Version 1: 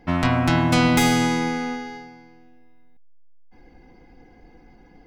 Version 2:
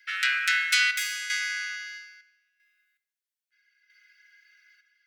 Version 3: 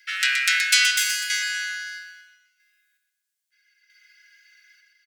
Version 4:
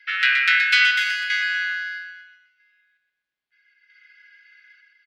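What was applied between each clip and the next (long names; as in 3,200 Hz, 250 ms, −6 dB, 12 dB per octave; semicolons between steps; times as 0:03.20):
square-wave tremolo 0.77 Hz, depth 65%, duty 70%; Butterworth high-pass 1,400 Hz 96 dB per octave; convolution reverb RT60 0.75 s, pre-delay 5 ms, DRR 8.5 dB; level +3.5 dB
drawn EQ curve 750 Hz 0 dB, 8,100 Hz +13 dB, 13,000 Hz +11 dB; on a send: repeating echo 124 ms, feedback 46%, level −6.5 dB; on the sum: level −3 dB
high-frequency loss of the air 370 metres; level +8 dB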